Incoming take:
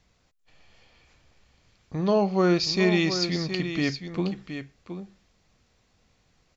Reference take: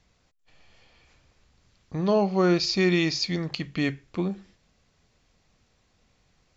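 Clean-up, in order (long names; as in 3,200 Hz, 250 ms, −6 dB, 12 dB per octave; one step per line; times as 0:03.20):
echo removal 719 ms −9.5 dB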